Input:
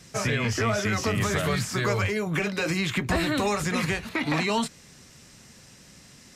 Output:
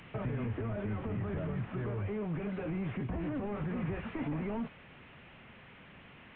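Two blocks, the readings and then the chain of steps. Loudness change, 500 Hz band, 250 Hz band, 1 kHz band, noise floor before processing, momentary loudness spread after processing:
−11.0 dB, −11.0 dB, −7.5 dB, −15.0 dB, −52 dBFS, 18 LU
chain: linear delta modulator 16 kbit/s, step −44.5 dBFS
brickwall limiter −24.5 dBFS, peak gain reduction 6.5 dB
speech leveller 0.5 s
level −3.5 dB

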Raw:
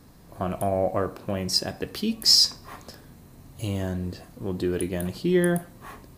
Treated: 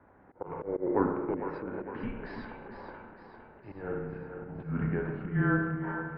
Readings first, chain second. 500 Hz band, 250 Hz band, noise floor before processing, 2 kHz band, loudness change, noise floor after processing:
−6.5 dB, −5.0 dB, −50 dBFS, +0.5 dB, −9.0 dB, −58 dBFS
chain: parametric band 380 Hz −2 dB 0.31 octaves
single-sideband voice off tune −200 Hz 360–2,100 Hz
spring reverb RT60 1.1 s, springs 31/51 ms, chirp 70 ms, DRR 2.5 dB
volume swells 200 ms
on a send: echo with a time of its own for lows and highs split 340 Hz, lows 331 ms, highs 456 ms, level −8 dB

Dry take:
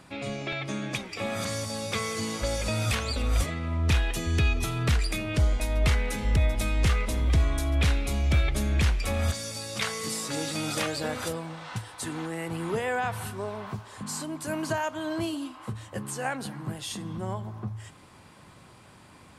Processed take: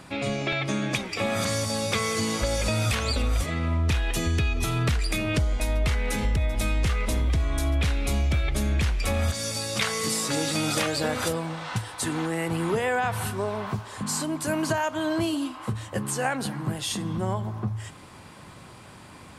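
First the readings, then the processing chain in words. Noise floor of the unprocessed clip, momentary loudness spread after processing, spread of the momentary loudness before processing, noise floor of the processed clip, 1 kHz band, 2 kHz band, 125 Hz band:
−52 dBFS, 7 LU, 10 LU, −46 dBFS, +3.5 dB, +3.0 dB, +1.0 dB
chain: downward compressor, threshold −27 dBFS, peak gain reduction 9 dB
level +6 dB

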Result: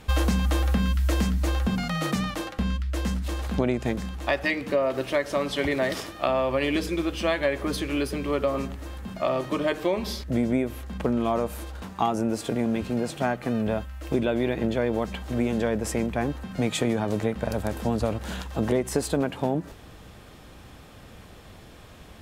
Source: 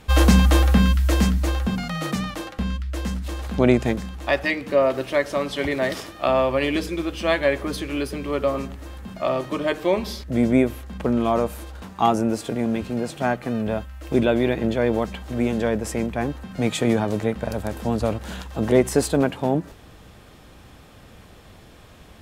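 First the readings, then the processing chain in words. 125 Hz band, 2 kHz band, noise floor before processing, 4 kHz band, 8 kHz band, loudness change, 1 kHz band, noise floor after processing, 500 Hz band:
−4.5 dB, −3.5 dB, −47 dBFS, −3.0 dB, −3.0 dB, −4.0 dB, −4.0 dB, −47 dBFS, −4.0 dB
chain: downward compressor 6 to 1, threshold −20 dBFS, peak gain reduction 10 dB

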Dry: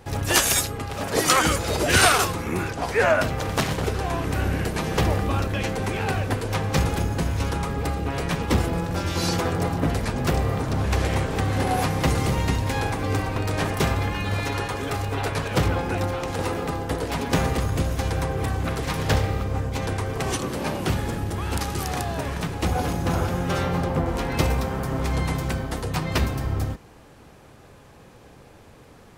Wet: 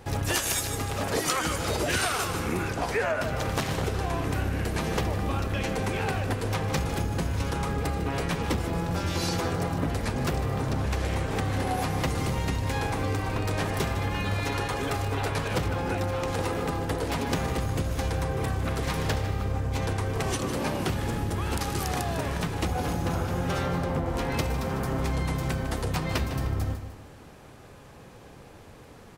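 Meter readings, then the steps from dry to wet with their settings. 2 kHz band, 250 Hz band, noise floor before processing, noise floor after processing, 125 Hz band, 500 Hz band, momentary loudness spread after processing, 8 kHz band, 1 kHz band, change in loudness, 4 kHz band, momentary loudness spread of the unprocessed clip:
−5.0 dB, −3.5 dB, −49 dBFS, −48 dBFS, −3.5 dB, −4.0 dB, 3 LU, −6.0 dB, −4.5 dB, −4.5 dB, −5.5 dB, 7 LU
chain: repeating echo 152 ms, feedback 36%, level −13 dB
downward compressor 6 to 1, threshold −24 dBFS, peak gain reduction 11.5 dB

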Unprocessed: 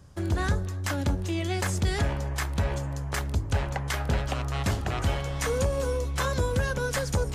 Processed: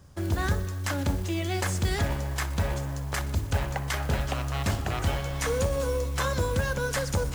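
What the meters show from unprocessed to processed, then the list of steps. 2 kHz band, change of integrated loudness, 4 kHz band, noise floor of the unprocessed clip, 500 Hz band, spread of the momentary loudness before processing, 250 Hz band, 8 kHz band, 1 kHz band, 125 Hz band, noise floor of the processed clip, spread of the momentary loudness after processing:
+0.5 dB, 0.0 dB, +0.5 dB, −33 dBFS, 0.0 dB, 3 LU, −0.5 dB, +0.5 dB, 0.0 dB, −0.5 dB, −33 dBFS, 3 LU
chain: mains-hum notches 60/120/180/240/300/360/420 Hz
noise that follows the level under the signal 23 dB
feedback echo with a high-pass in the loop 62 ms, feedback 80%, level −17 dB

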